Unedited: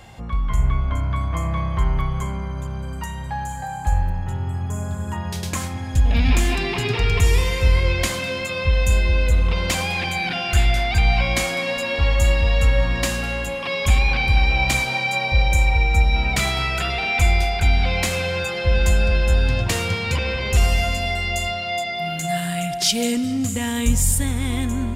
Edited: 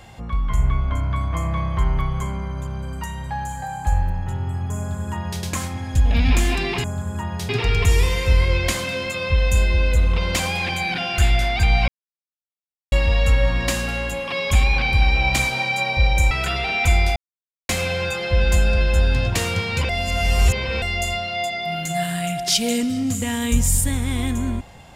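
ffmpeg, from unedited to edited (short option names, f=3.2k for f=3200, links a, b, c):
-filter_complex "[0:a]asplit=10[a][b][c][d][e][f][g][h][i][j];[a]atrim=end=6.842[k];[b]atrim=start=4.768:end=5.422[l];[c]atrim=start=6.838:end=11.23,asetpts=PTS-STARTPTS,afade=t=out:st=4.388:d=0.004:c=hsin[m];[d]atrim=start=11.23:end=12.27,asetpts=PTS-STARTPTS,volume=0[n];[e]atrim=start=12.27:end=15.662,asetpts=PTS-STARTPTS,afade=t=in:d=0.004:c=hsin[o];[f]atrim=start=16.648:end=17.5,asetpts=PTS-STARTPTS,afade=t=out:st=0.848:d=0.004:c=hsin[p];[g]atrim=start=17.5:end=18.03,asetpts=PTS-STARTPTS,volume=0[q];[h]atrim=start=18.03:end=20.232,asetpts=PTS-STARTPTS,afade=t=in:d=0.004:c=hsin[r];[i]atrim=start=20.228:end=21.162,asetpts=PTS-STARTPTS,areverse[s];[j]atrim=start=21.158[t];[k][l]acrossfade=d=0.004:c1=hsin:c2=hsin[u];[m][n][o]concat=n=3:v=0:a=1[v];[u][v]acrossfade=d=0.004:c1=hsin:c2=hsin[w];[p][q][r]concat=n=3:v=0:a=1[x];[w][x]acrossfade=d=0.004:c1=hsin:c2=hsin[y];[y][s]acrossfade=d=0.004:c1=hsin:c2=hsin[z];[z][t]acrossfade=d=0.004:c1=hsin:c2=hsin"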